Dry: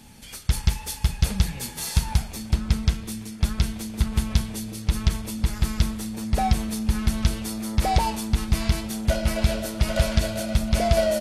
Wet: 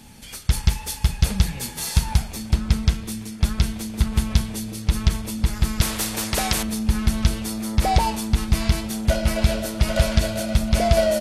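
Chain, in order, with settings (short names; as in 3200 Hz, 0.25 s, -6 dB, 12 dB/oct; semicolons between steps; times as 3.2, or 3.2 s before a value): 5.81–6.63 spectral compressor 2:1; gain +2.5 dB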